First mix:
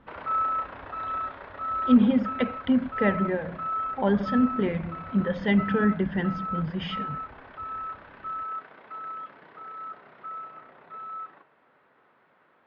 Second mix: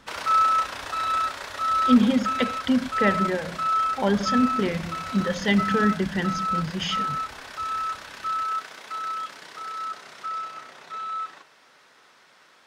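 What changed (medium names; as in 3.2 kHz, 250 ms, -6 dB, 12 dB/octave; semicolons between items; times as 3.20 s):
background: remove tape spacing loss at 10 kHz 31 dB; master: remove distance through air 410 m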